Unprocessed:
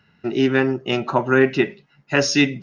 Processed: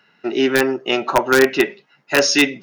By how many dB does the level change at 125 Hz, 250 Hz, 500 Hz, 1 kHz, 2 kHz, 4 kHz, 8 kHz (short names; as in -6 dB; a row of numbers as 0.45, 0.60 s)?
-9.5 dB, -0.5 dB, +2.5 dB, +4.0 dB, +4.0 dB, +5.0 dB, n/a